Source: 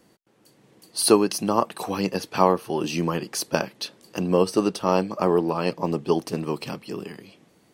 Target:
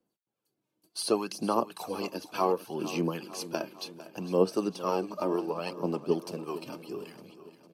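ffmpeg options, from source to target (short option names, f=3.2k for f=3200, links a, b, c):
-filter_complex "[0:a]acrossover=split=9000[a][b];[b]acompressor=threshold=-49dB:ratio=4:attack=1:release=60[c];[a][c]amix=inputs=2:normalize=0,bandreject=f=1.9k:w=5.4,agate=range=-17dB:threshold=-49dB:ratio=16:detection=peak,equalizer=f=12k:w=3.4:g=8.5,acrossover=split=160[d][e];[d]acompressor=threshold=-49dB:ratio=6[f];[e]aphaser=in_gain=1:out_gain=1:delay=3.3:decay=0.5:speed=0.67:type=sinusoidal[g];[f][g]amix=inputs=2:normalize=0,acrossover=split=710[h][i];[h]aeval=exprs='val(0)*(1-0.5/2+0.5/2*cos(2*PI*3.6*n/s))':c=same[j];[i]aeval=exprs='val(0)*(1-0.5/2-0.5/2*cos(2*PI*3.6*n/s))':c=same[k];[j][k]amix=inputs=2:normalize=0,aecho=1:1:454|908|1362|1816|2270:0.178|0.0978|0.0538|0.0296|0.0163,volume=-7dB"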